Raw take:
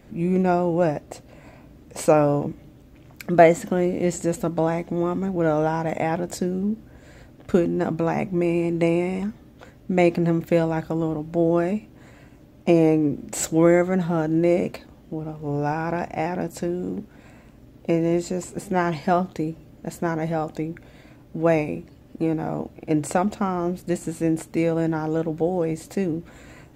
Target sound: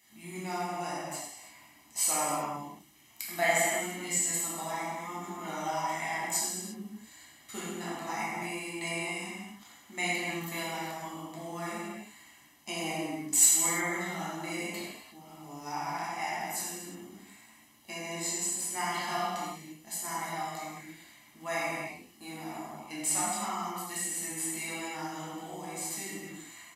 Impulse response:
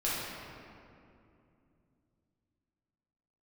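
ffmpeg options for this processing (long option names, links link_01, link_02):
-filter_complex "[0:a]aderivative,aecho=1:1:1:0.77[link_01];[1:a]atrim=start_sample=2205,afade=type=out:start_time=0.27:duration=0.01,atrim=end_sample=12348,asetrate=26901,aresample=44100[link_02];[link_01][link_02]afir=irnorm=-1:irlink=0,volume=-2dB"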